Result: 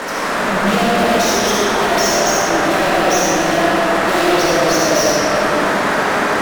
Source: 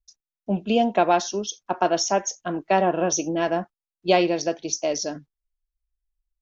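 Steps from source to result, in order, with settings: bass shelf 480 Hz -9 dB; band noise 180–1800 Hz -39 dBFS; fuzz box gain 43 dB, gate -45 dBFS; algorithmic reverb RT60 4.3 s, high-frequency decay 0.5×, pre-delay 25 ms, DRR -7 dB; trim -7 dB

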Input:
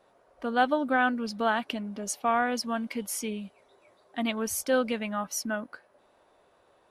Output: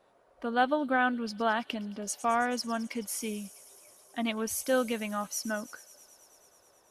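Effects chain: feedback echo behind a high-pass 108 ms, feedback 84%, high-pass 5 kHz, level -13.5 dB; trim -2 dB

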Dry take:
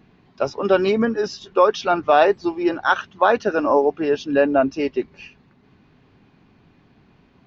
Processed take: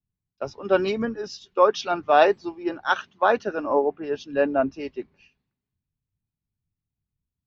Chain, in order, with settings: three bands expanded up and down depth 100%; trim -6.5 dB

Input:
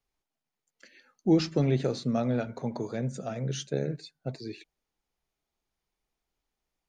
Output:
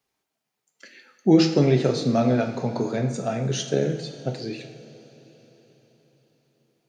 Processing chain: high-pass 120 Hz; two-slope reverb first 0.6 s, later 4.7 s, from -15 dB, DRR 4.5 dB; trim +7 dB

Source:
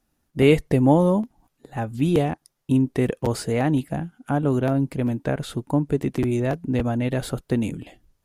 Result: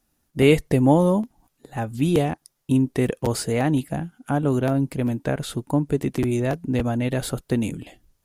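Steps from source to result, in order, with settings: treble shelf 4.4 kHz +6 dB

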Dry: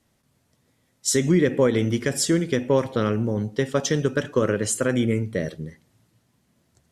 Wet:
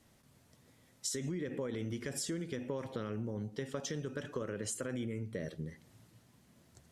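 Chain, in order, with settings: peak limiter -15.5 dBFS, peak gain reduction 7.5 dB; compression 4:1, threshold -40 dBFS, peak gain reduction 16.5 dB; trim +1.5 dB

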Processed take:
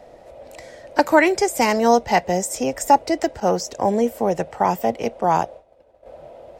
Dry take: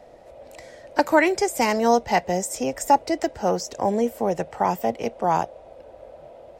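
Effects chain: 3.40–6.06 s: expander -34 dBFS; trim +3 dB

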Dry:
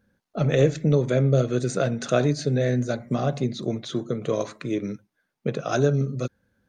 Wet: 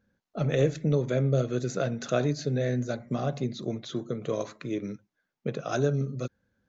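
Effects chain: resampled via 16 kHz; trim -5 dB

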